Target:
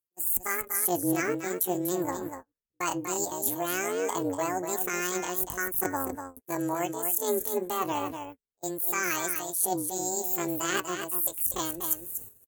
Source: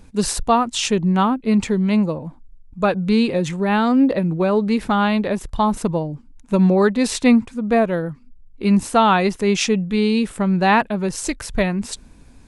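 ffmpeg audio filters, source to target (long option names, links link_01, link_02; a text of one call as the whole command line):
ffmpeg -i in.wav -filter_complex "[0:a]acrossover=split=960[link_01][link_02];[link_02]aexciter=amount=13.9:drive=8.8:freq=4300[link_03];[link_01][link_03]amix=inputs=2:normalize=0,asetrate=76340,aresample=44100,atempo=0.577676,highpass=frequency=120:poles=1,areverse,acompressor=threshold=-19dB:ratio=8,areverse,flanger=delay=3.9:depth=5.7:regen=68:speed=0.2:shape=sinusoidal,aecho=1:1:243:0.422,agate=range=-36dB:threshold=-37dB:ratio=16:detection=peak,tremolo=f=180:d=0.71" out.wav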